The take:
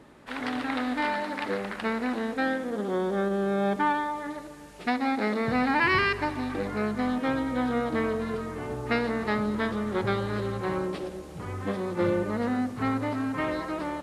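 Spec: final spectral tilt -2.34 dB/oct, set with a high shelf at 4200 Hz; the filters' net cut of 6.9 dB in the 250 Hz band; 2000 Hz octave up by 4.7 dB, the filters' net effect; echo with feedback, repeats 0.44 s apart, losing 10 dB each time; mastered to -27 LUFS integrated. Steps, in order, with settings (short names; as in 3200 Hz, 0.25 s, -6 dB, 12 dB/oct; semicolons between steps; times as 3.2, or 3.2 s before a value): bell 250 Hz -8.5 dB; bell 2000 Hz +4 dB; high shelf 4200 Hz +9 dB; feedback echo 0.44 s, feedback 32%, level -10 dB; gain +0.5 dB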